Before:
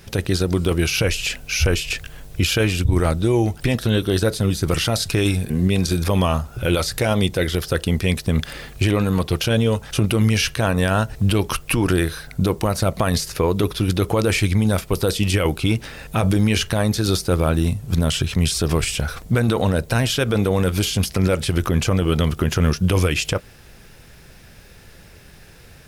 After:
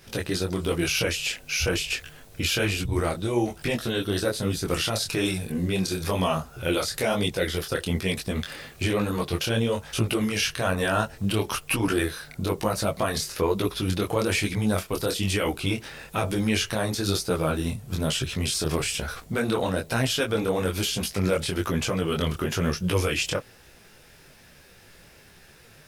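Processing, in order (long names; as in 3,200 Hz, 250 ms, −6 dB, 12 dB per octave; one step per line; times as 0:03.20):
low-shelf EQ 160 Hz −9 dB
micro pitch shift up and down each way 38 cents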